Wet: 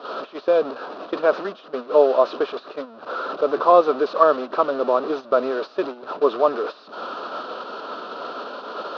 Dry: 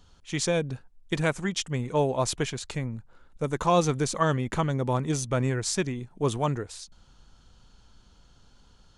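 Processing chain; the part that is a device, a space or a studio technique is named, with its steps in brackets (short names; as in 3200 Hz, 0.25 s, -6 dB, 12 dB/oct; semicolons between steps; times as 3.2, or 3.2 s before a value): digital answering machine (BPF 340–3300 Hz; delta modulation 32 kbps, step -29 dBFS; speaker cabinet 400–3400 Hz, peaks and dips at 430 Hz +5 dB, 610 Hz +7 dB, 870 Hz -9 dB, 1300 Hz +7 dB, 2100 Hz -9 dB, 3200 Hz -6 dB); gate -35 dBFS, range -12 dB; ten-band EQ 125 Hz -4 dB, 250 Hz +6 dB, 1000 Hz +6 dB, 2000 Hz -11 dB, 4000 Hz +3 dB; gain +6.5 dB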